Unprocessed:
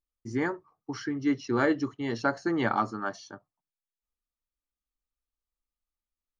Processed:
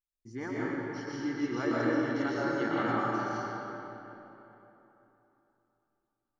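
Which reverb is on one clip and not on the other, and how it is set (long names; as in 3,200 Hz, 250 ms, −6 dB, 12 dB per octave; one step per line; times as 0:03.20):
comb and all-pass reverb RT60 3.4 s, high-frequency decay 0.65×, pre-delay 85 ms, DRR −8 dB
level −10.5 dB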